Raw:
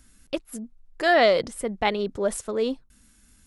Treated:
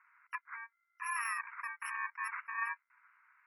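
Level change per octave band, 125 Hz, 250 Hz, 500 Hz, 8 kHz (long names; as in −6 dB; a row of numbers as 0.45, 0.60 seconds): below −40 dB, below −40 dB, below −40 dB, −12.0 dB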